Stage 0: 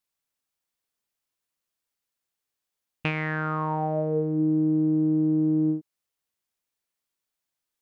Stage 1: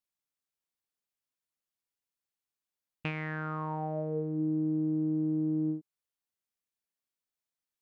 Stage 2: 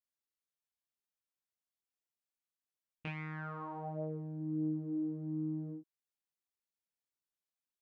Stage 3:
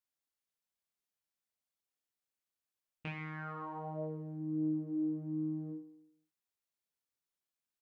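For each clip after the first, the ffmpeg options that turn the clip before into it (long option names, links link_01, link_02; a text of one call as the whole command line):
ffmpeg -i in.wav -af "equalizer=frequency=200:width_type=o:width=1.1:gain=2.5,volume=-8.5dB" out.wav
ffmpeg -i in.wav -af "flanger=delay=18:depth=6.9:speed=0.46,volume=-4dB" out.wav
ffmpeg -i in.wav -af "aecho=1:1:68|136|204|272|340|408|476:0.266|0.157|0.0926|0.0546|0.0322|0.019|0.0112" out.wav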